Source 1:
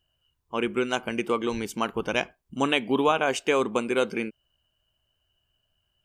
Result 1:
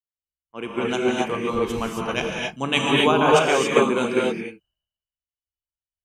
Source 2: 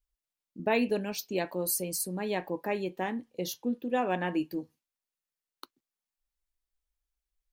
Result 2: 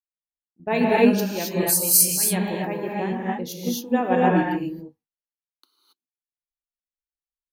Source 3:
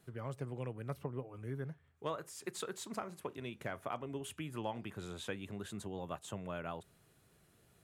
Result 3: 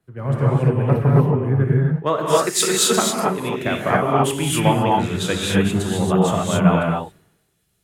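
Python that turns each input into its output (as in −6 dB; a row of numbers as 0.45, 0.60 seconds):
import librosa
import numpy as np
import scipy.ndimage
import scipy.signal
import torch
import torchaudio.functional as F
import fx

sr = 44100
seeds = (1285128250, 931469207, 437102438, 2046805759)

y = fx.rev_gated(x, sr, seeds[0], gate_ms=300, shape='rising', drr_db=-3.5)
y = fx.dynamic_eq(y, sr, hz=150.0, q=2.3, threshold_db=-47.0, ratio=4.0, max_db=6)
y = fx.band_widen(y, sr, depth_pct=100)
y = y * 10.0 ** (-2 / 20.0) / np.max(np.abs(y))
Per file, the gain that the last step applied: −0.5, +2.0, +18.5 decibels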